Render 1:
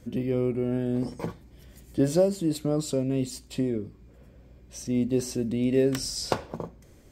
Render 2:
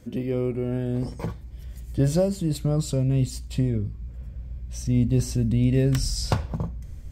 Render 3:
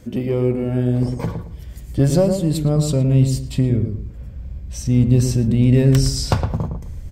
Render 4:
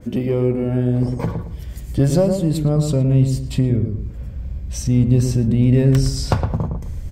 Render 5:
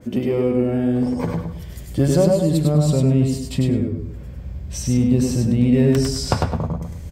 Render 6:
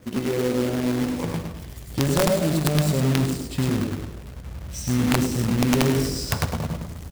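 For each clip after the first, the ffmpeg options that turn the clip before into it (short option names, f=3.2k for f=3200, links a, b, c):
-af "asubboost=boost=11:cutoff=110,volume=1dB"
-filter_complex "[0:a]asplit=2[a][b];[b]aeval=exprs='clip(val(0),-1,0.0668)':c=same,volume=-8dB[c];[a][c]amix=inputs=2:normalize=0,asplit=2[d][e];[e]adelay=112,lowpass=f=1.1k:p=1,volume=-5.5dB,asplit=2[f][g];[g]adelay=112,lowpass=f=1.1k:p=1,volume=0.32,asplit=2[h][i];[i]adelay=112,lowpass=f=1.1k:p=1,volume=0.32,asplit=2[j][k];[k]adelay=112,lowpass=f=1.1k:p=1,volume=0.32[l];[d][f][h][j][l]amix=inputs=5:normalize=0,volume=3dB"
-filter_complex "[0:a]asplit=2[a][b];[b]acompressor=threshold=-24dB:ratio=6,volume=-1dB[c];[a][c]amix=inputs=2:normalize=0,adynamicequalizer=threshold=0.01:dfrequency=2400:dqfactor=0.7:tfrequency=2400:tqfactor=0.7:attack=5:release=100:ratio=0.375:range=2.5:mode=cutabove:tftype=highshelf,volume=-2dB"
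-filter_complex "[0:a]highpass=f=130:p=1,asplit=2[a][b];[b]aecho=0:1:100|200|300:0.668|0.114|0.0193[c];[a][c]amix=inputs=2:normalize=0"
-filter_complex "[0:a]aeval=exprs='(mod(2.11*val(0)+1,2)-1)/2.11':c=same,acrusher=bits=2:mode=log:mix=0:aa=0.000001,asplit=6[a][b][c][d][e][f];[b]adelay=101,afreqshift=50,volume=-14.5dB[g];[c]adelay=202,afreqshift=100,volume=-20.7dB[h];[d]adelay=303,afreqshift=150,volume=-26.9dB[i];[e]adelay=404,afreqshift=200,volume=-33.1dB[j];[f]adelay=505,afreqshift=250,volume=-39.3dB[k];[a][g][h][i][j][k]amix=inputs=6:normalize=0,volume=-5dB"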